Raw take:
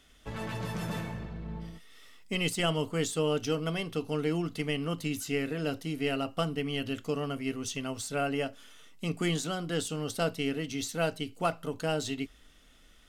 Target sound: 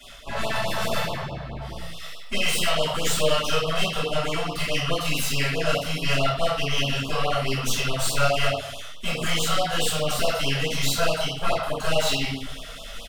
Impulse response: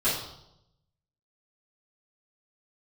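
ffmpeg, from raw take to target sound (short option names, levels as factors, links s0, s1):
-filter_complex "[0:a]lowshelf=f=470:t=q:w=3:g=-6.5,bandreject=f=53.19:t=h:w=4,bandreject=f=106.38:t=h:w=4,bandreject=f=159.57:t=h:w=4,bandreject=f=212.76:t=h:w=4,bandreject=f=265.95:t=h:w=4,bandreject=f=319.14:t=h:w=4,bandreject=f=372.33:t=h:w=4,bandreject=f=425.52:t=h:w=4,bandreject=f=478.71:t=h:w=4,bandreject=f=531.9:t=h:w=4,bandreject=f=585.09:t=h:w=4,bandreject=f=638.28:t=h:w=4,bandreject=f=691.47:t=h:w=4,bandreject=f=744.66:t=h:w=4,bandreject=f=797.85:t=h:w=4,bandreject=f=851.04:t=h:w=4,bandreject=f=904.23:t=h:w=4,bandreject=f=957.42:t=h:w=4,bandreject=f=1010.61:t=h:w=4,bandreject=f=1063.8:t=h:w=4,bandreject=f=1116.99:t=h:w=4,bandreject=f=1170.18:t=h:w=4,bandreject=f=1223.37:t=h:w=4,bandreject=f=1276.56:t=h:w=4,bandreject=f=1329.75:t=h:w=4,bandreject=f=1382.94:t=h:w=4,bandreject=f=1436.13:t=h:w=4,bandreject=f=1489.32:t=h:w=4,acrossover=split=730[s0][s1];[s0]acompressor=threshold=0.00708:ratio=6[s2];[s2][s1]amix=inputs=2:normalize=0,alimiter=level_in=1.78:limit=0.0631:level=0:latency=1:release=23,volume=0.562,areverse,acompressor=mode=upward:threshold=0.00794:ratio=2.5,areverse,aeval=exprs='0.0376*(cos(1*acos(clip(val(0)/0.0376,-1,1)))-cos(1*PI/2))+0.00944*(cos(3*acos(clip(val(0)/0.0376,-1,1)))-cos(3*PI/2))+0.00531*(cos(4*acos(clip(val(0)/0.0376,-1,1)))-cos(4*PI/2))+0.00299*(cos(5*acos(clip(val(0)/0.0376,-1,1)))-cos(5*PI/2))':c=same,asplit=2[s3][s4];[s4]adelay=30,volume=0.501[s5];[s3][s5]amix=inputs=2:normalize=0[s6];[1:a]atrim=start_sample=2205,afade=t=out:st=0.36:d=0.01,atrim=end_sample=16317[s7];[s6][s7]afir=irnorm=-1:irlink=0,afftfilt=real='re*(1-between(b*sr/1024,250*pow(1900/250,0.5+0.5*sin(2*PI*4.7*pts/sr))/1.41,250*pow(1900/250,0.5+0.5*sin(2*PI*4.7*pts/sr))*1.41))':imag='im*(1-between(b*sr/1024,250*pow(1900/250,0.5+0.5*sin(2*PI*4.7*pts/sr))/1.41,250*pow(1900/250,0.5+0.5*sin(2*PI*4.7*pts/sr))*1.41))':win_size=1024:overlap=0.75,volume=1.88"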